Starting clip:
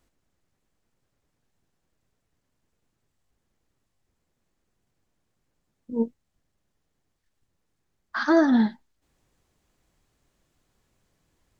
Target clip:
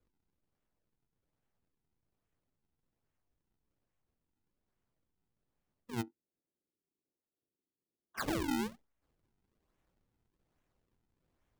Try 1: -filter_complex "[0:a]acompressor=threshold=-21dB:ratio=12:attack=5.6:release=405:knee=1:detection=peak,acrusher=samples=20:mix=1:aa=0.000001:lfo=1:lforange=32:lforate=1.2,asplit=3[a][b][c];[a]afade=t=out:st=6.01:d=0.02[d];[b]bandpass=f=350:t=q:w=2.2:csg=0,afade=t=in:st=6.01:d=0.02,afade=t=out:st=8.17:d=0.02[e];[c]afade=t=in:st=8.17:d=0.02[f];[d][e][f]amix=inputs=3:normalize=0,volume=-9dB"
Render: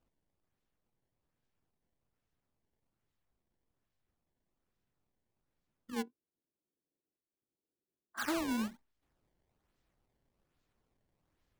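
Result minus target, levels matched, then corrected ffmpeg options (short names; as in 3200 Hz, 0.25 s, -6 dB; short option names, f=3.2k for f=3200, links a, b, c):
decimation with a swept rate: distortion -15 dB
-filter_complex "[0:a]acompressor=threshold=-21dB:ratio=12:attack=5.6:release=405:knee=1:detection=peak,acrusher=samples=44:mix=1:aa=0.000001:lfo=1:lforange=70.4:lforate=1.2,asplit=3[a][b][c];[a]afade=t=out:st=6.01:d=0.02[d];[b]bandpass=f=350:t=q:w=2.2:csg=0,afade=t=in:st=6.01:d=0.02,afade=t=out:st=8.17:d=0.02[e];[c]afade=t=in:st=8.17:d=0.02[f];[d][e][f]amix=inputs=3:normalize=0,volume=-9dB"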